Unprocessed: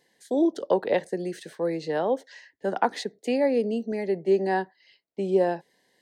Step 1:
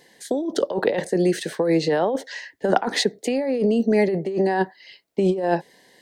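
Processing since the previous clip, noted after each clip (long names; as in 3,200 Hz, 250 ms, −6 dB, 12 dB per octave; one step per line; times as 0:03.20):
compressor whose output falls as the input rises −29 dBFS, ratio −1
level +8.5 dB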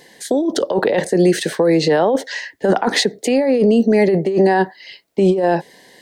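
brickwall limiter −14 dBFS, peak gain reduction 10 dB
level +8 dB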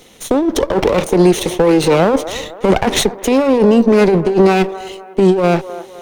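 lower of the sound and its delayed copy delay 0.31 ms
delay with a band-pass on its return 255 ms, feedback 44%, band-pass 750 Hz, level −13 dB
level +3.5 dB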